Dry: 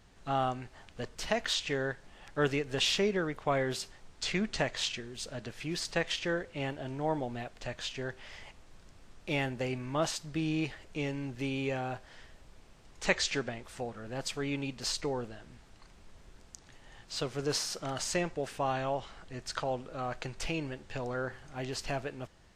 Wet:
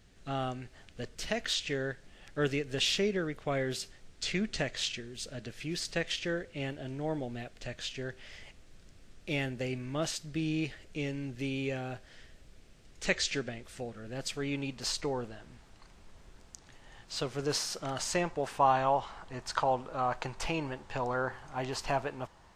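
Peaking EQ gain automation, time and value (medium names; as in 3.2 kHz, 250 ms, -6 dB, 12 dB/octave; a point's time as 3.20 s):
peaking EQ 950 Hz 0.84 oct
14.07 s -9.5 dB
14.79 s +1 dB
17.92 s +1 dB
18.53 s +11 dB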